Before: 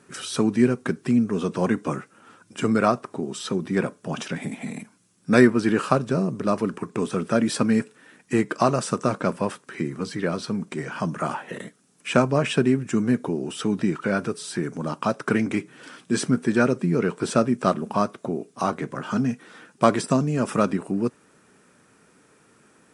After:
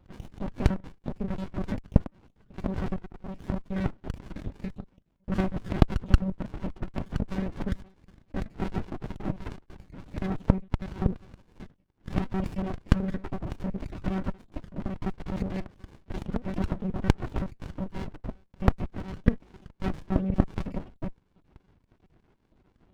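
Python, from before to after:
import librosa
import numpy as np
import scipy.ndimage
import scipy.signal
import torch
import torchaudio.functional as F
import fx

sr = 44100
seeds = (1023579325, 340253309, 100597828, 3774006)

p1 = fx.spec_dropout(x, sr, seeds[0], share_pct=50)
p2 = fx.differentiator(p1, sr, at=(11.14, 11.55))
p3 = fx.over_compress(p2, sr, threshold_db=-25.0, ratio=-0.5)
p4 = p2 + (p3 * librosa.db_to_amplitude(2.0))
p5 = fx.lpc_monotone(p4, sr, seeds[1], pitch_hz=190.0, order=16)
p6 = fx.running_max(p5, sr, window=65)
y = p6 * librosa.db_to_amplitude(-9.5)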